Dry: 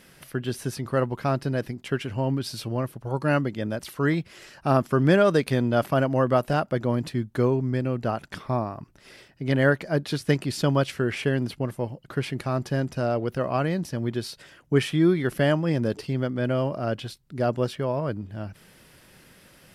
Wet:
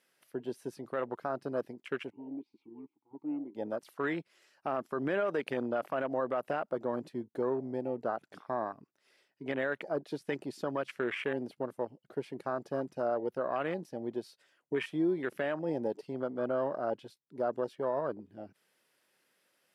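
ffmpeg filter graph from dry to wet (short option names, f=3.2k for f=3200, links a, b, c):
-filter_complex "[0:a]asettb=1/sr,asplit=3[a][b][c];[a]atrim=end=2.104[d];[b]atrim=start=2.1:end=3.55,asetpts=PTS-STARTPTS,afade=t=in:d=0.004:c=qsin,afade=t=out:st=1.446:d=0.004:c=qsin,asplit=3[e][f][g];[e]bandpass=f=300:t=q:w=8,volume=0dB[h];[f]bandpass=f=870:t=q:w=8,volume=-6dB[i];[g]bandpass=f=2.24k:t=q:w=8,volume=-9dB[j];[h][i][j]amix=inputs=3:normalize=0,bass=f=250:g=6,treble=f=4k:g=-4[k];[c]atrim=start=3.546[l];[d][k]acrossfade=d=0.004:c1=hsin:c2=qsin[m];[m][l]acrossfade=d=0.004:c1=qsin:c2=hsin,afwtdn=0.0251,highpass=380,alimiter=limit=-20dB:level=0:latency=1:release=73,volume=-2.5dB"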